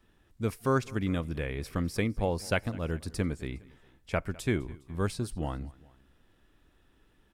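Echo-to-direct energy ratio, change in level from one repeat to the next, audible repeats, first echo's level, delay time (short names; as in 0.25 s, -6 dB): -21.0 dB, -4.5 dB, 2, -22.5 dB, 0.205 s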